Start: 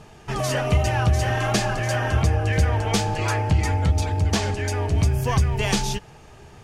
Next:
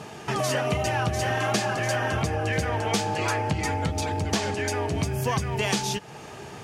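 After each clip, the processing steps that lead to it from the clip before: HPF 150 Hz 12 dB/oct; compressor 2:1, threshold -38 dBFS, peak gain reduction 11.5 dB; gain +8 dB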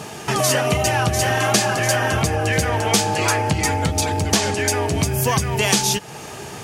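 high shelf 6300 Hz +11.5 dB; gain +6 dB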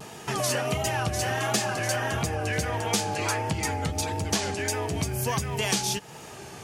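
vibrato 1.5 Hz 58 cents; gain -8.5 dB

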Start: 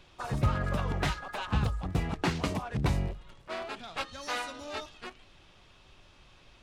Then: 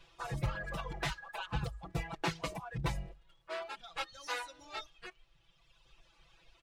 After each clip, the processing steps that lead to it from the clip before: reverb removal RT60 1.9 s; bell 230 Hz -10 dB 1.1 oct; comb 6 ms, depth 95%; gain -5.5 dB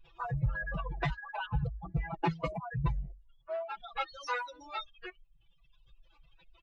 spectral contrast raised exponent 2.1; gain +4.5 dB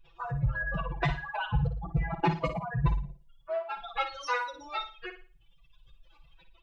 AGC gain up to 4 dB; on a send: flutter echo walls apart 9.7 m, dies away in 0.36 s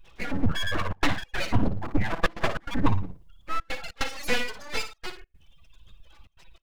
full-wave rectifier; step gate "xxxxxxxxx.xx." 146 bpm -24 dB; gain +7.5 dB

